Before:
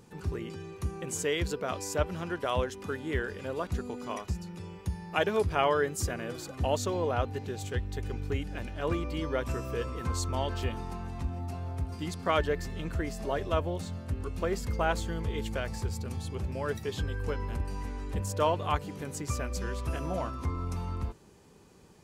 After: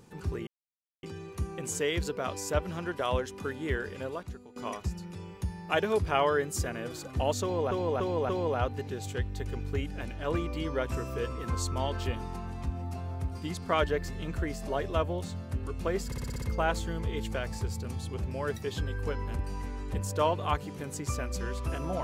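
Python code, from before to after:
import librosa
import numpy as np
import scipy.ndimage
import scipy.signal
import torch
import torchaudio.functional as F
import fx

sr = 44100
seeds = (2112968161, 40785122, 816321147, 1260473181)

y = fx.edit(x, sr, fx.insert_silence(at_s=0.47, length_s=0.56),
    fx.fade_out_to(start_s=3.47, length_s=0.53, curve='qua', floor_db=-15.0),
    fx.repeat(start_s=6.86, length_s=0.29, count=4),
    fx.stutter(start_s=14.63, slice_s=0.06, count=7), tone=tone)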